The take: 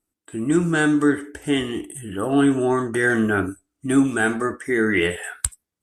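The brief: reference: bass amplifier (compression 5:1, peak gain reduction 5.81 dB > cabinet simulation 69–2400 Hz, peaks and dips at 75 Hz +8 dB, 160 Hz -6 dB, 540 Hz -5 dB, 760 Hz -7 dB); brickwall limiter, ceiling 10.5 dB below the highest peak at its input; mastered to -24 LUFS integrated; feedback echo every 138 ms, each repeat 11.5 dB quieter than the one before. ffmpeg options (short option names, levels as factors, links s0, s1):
-af "alimiter=limit=0.188:level=0:latency=1,aecho=1:1:138|276|414:0.266|0.0718|0.0194,acompressor=threshold=0.0708:ratio=5,highpass=f=69:w=0.5412,highpass=f=69:w=1.3066,equalizer=f=75:t=q:w=4:g=8,equalizer=f=160:t=q:w=4:g=-6,equalizer=f=540:t=q:w=4:g=-5,equalizer=f=760:t=q:w=4:g=-7,lowpass=f=2400:w=0.5412,lowpass=f=2400:w=1.3066,volume=1.78"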